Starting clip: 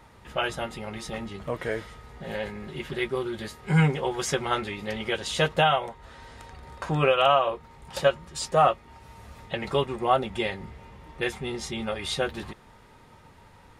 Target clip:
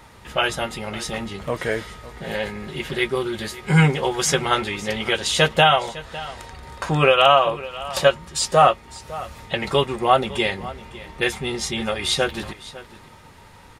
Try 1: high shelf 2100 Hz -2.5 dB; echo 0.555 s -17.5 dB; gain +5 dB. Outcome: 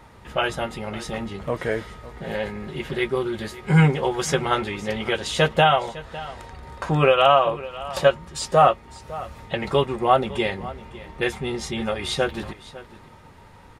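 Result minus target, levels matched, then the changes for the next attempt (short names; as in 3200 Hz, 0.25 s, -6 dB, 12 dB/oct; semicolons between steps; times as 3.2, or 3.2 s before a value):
4000 Hz band -4.0 dB
change: high shelf 2100 Hz +5.5 dB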